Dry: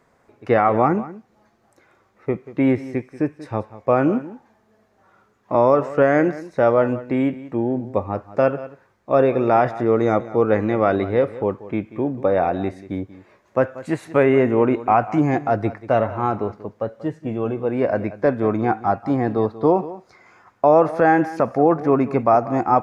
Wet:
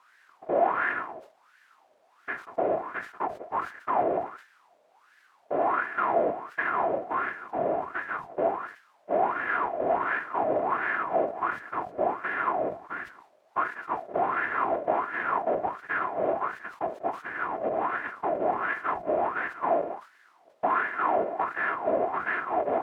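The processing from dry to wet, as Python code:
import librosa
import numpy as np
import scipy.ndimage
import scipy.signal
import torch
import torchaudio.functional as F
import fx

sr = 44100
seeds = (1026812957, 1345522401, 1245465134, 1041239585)

p1 = np.r_[np.sort(x[:len(x) // 128 * 128].reshape(-1, 128), axis=1).ravel(), x[len(x) // 128 * 128:]]
p2 = fx.hum_notches(p1, sr, base_hz=50, count=2)
p3 = fx.whisperise(p2, sr, seeds[0])
p4 = fx.low_shelf(p3, sr, hz=150.0, db=6.5)
p5 = fx.over_compress(p4, sr, threshold_db=-18.0, ratio=-1.0)
p6 = p4 + (p5 * 10.0 ** (-0.5 / 20.0))
p7 = fx.leveller(p6, sr, passes=2)
p8 = scipy.signal.sosfilt(scipy.signal.butter(4, 2500.0, 'lowpass', fs=sr, output='sos'), p7)
p9 = fx.quant_dither(p8, sr, seeds[1], bits=6, dither='triangular')
p10 = fx.wah_lfo(p9, sr, hz=1.4, low_hz=580.0, high_hz=1700.0, q=6.6)
p11 = fx.sustainer(p10, sr, db_per_s=150.0)
y = p11 * 10.0 ** (-7.0 / 20.0)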